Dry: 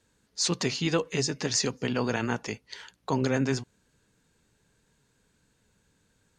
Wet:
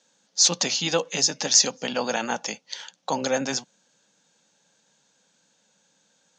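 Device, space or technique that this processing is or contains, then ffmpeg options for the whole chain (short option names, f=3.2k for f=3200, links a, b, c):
television speaker: -af "highpass=f=180:w=0.5412,highpass=f=180:w=1.3066,equalizer=f=250:t=q:w=4:g=-4,equalizer=f=540:t=q:w=4:g=9,equalizer=f=810:t=q:w=4:g=8,equalizer=f=2k:t=q:w=4:g=-3,equalizer=f=3.4k:t=q:w=4:g=5,lowpass=f=7k:w=0.5412,lowpass=f=7k:w=1.3066,equalizer=f=100:t=o:w=0.67:g=-7,equalizer=f=400:t=o:w=0.67:g=-11,equalizer=f=1k:t=o:w=0.67:g=-3,equalizer=f=6.3k:t=o:w=0.67:g=10,volume=3.5dB"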